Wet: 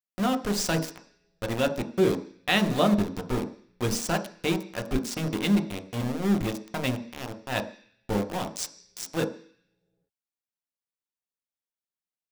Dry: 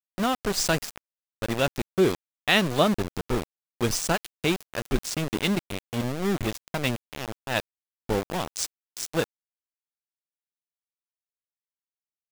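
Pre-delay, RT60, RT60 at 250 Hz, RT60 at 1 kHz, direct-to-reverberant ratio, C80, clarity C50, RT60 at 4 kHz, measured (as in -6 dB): 3 ms, 0.50 s, 0.50 s, 0.50 s, 5.5 dB, 16.0 dB, 13.5 dB, 0.85 s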